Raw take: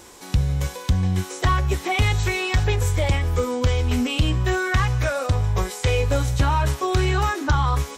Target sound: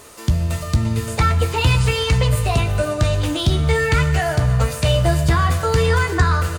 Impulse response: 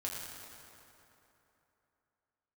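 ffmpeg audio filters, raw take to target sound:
-filter_complex "[0:a]asetrate=53361,aresample=44100,asplit=2[s0][s1];[s1]adelay=15,volume=0.282[s2];[s0][s2]amix=inputs=2:normalize=0,asplit=2[s3][s4];[1:a]atrim=start_sample=2205[s5];[s4][s5]afir=irnorm=-1:irlink=0,volume=0.422[s6];[s3][s6]amix=inputs=2:normalize=0"

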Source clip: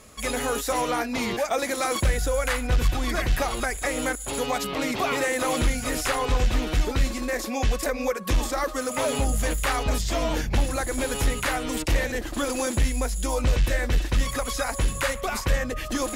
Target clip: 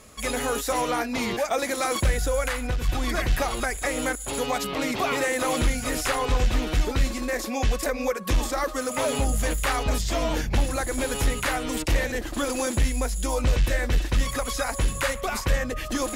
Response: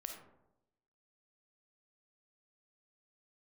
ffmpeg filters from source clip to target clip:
-filter_complex "[0:a]asplit=3[s0][s1][s2];[s0]afade=t=out:st=2.47:d=0.02[s3];[s1]acompressor=threshold=0.0708:ratio=6,afade=t=in:st=2.47:d=0.02,afade=t=out:st=2.87:d=0.02[s4];[s2]afade=t=in:st=2.87:d=0.02[s5];[s3][s4][s5]amix=inputs=3:normalize=0"

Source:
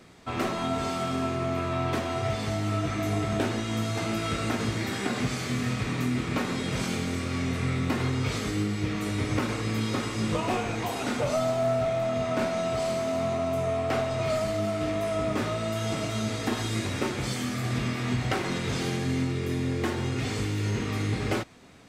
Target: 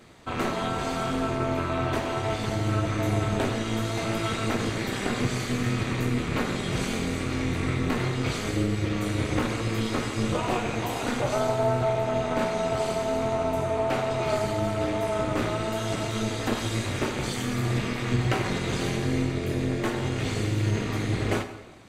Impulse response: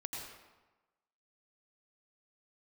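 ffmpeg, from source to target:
-filter_complex "[0:a]flanger=delay=8.4:depth=8.9:regen=-59:speed=0.68:shape=sinusoidal,bandreject=f=5300:w=9.7,tremolo=f=230:d=0.788,asplit=2[s0][s1];[1:a]atrim=start_sample=2205[s2];[s1][s2]afir=irnorm=-1:irlink=0,volume=0.447[s3];[s0][s3]amix=inputs=2:normalize=0,volume=2.11"

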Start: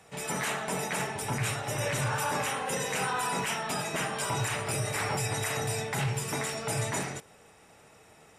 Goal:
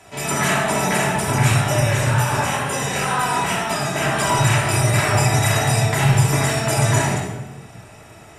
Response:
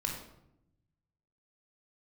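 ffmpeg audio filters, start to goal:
-filter_complex "[0:a]asettb=1/sr,asplit=3[s0][s1][s2];[s0]atrim=end=1.804[s3];[s1]atrim=start=1.8:end=4.02,asetpts=PTS-STARTPTS,afade=t=in:d=0.004:c=qsin,afade=t=out:st=2.216:d=0.004:c=qsin,flanger=delay=19:depth=7:speed=2.1[s4];[s2]atrim=start=4.016[s5];[s3][s4]acrossfade=d=0.004:c1=hsin:c2=qsin[s6];[s6][s5]acrossfade=d=0.004:c1=qsin:c2=hsin[s7];[1:a]atrim=start_sample=2205,asetrate=29106,aresample=44100[s8];[s7][s8]afir=irnorm=-1:irlink=0,volume=2.11"

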